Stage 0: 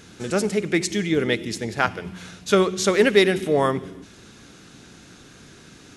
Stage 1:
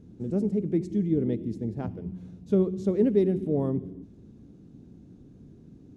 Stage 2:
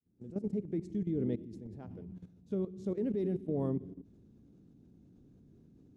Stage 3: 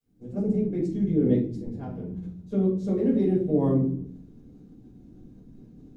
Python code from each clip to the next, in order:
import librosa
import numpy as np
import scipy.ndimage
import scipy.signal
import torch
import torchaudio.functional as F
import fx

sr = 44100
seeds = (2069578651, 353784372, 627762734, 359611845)

y1 = fx.curve_eq(x, sr, hz=(260.0, 970.0, 1400.0), db=(0, -20, -30))
y2 = fx.fade_in_head(y1, sr, length_s=0.59)
y2 = fx.level_steps(y2, sr, step_db=14)
y2 = y2 * 10.0 ** (-4.0 / 20.0)
y3 = fx.room_shoebox(y2, sr, seeds[0], volume_m3=250.0, walls='furnished', distance_m=5.4)